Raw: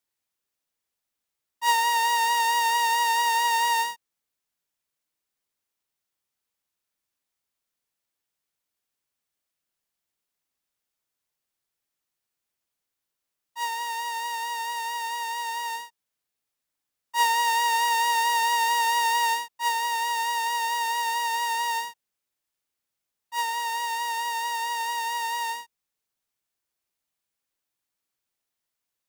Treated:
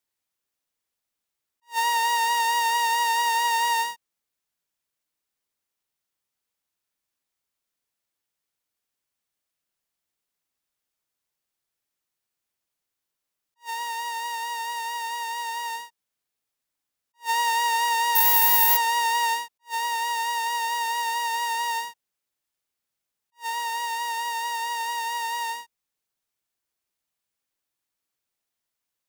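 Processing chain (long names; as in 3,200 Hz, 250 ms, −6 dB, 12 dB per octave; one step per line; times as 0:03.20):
0:18.15–0:18.77: bad sample-rate conversion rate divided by 3×, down none, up zero stuff
level that may rise only so fast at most 350 dB per second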